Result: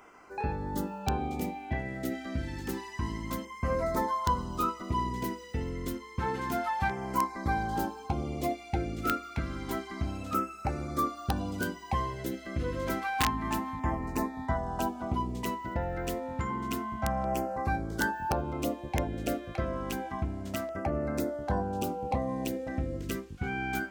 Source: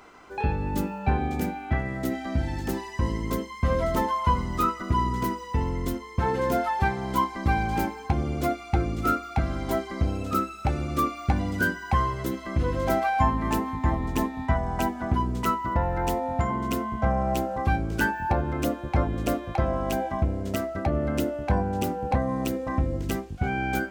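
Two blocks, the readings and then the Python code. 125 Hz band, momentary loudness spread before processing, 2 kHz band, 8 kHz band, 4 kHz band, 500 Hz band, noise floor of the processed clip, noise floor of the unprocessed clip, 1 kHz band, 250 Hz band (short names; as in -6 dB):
-8.0 dB, 5 LU, -5.5 dB, -2.0 dB, -2.5 dB, -5.5 dB, -46 dBFS, -40 dBFS, -5.5 dB, -5.5 dB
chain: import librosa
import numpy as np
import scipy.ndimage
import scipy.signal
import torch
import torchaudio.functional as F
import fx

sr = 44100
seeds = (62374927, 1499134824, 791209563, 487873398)

y = fx.low_shelf(x, sr, hz=170.0, db=-6.0)
y = (np.mod(10.0 ** (13.0 / 20.0) * y + 1.0, 2.0) - 1.0) / 10.0 ** (13.0 / 20.0)
y = fx.filter_lfo_notch(y, sr, shape='saw_down', hz=0.29, low_hz=400.0, high_hz=4200.0, q=1.7)
y = y * librosa.db_to_amplitude(-3.5)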